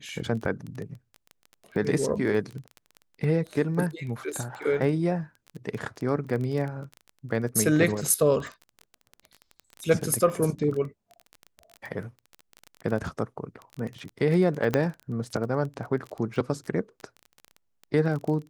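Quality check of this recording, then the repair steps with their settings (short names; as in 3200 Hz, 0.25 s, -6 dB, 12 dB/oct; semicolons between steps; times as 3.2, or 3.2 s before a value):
crackle 20/s -32 dBFS
14.74 pop -10 dBFS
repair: de-click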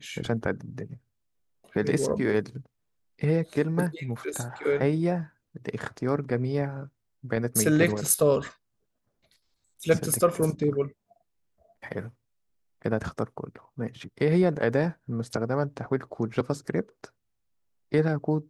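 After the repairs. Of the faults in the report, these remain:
14.74 pop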